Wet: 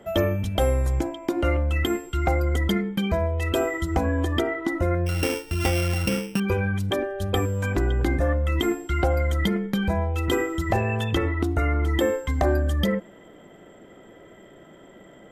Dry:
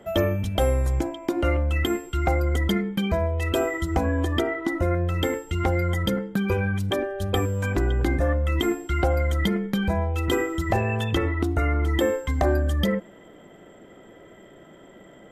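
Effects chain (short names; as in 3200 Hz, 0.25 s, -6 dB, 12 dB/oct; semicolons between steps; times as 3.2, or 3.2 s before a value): 5.06–6.4 sample sorter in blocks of 16 samples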